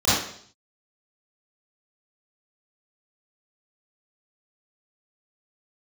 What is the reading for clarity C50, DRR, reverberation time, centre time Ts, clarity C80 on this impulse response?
−3.0 dB, −14.5 dB, 0.60 s, 70 ms, 3.5 dB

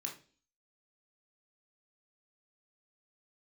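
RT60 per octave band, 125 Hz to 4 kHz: 0.45, 0.55, 0.45, 0.35, 0.40, 0.45 seconds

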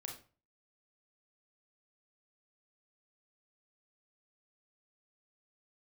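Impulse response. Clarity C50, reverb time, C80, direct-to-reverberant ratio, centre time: 6.5 dB, 0.35 s, 12.5 dB, 0.5 dB, 25 ms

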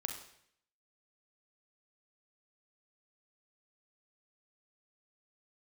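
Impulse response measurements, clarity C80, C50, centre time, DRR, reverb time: 9.5 dB, 6.0 dB, 25 ms, 3.5 dB, 0.65 s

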